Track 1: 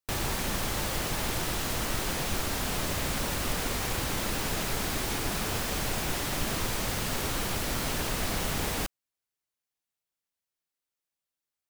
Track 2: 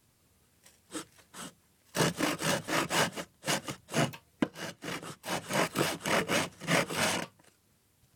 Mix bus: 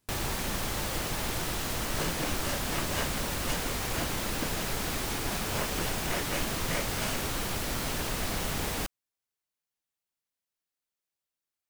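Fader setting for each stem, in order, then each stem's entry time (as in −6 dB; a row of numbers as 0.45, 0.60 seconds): −1.5, −7.0 decibels; 0.00, 0.00 seconds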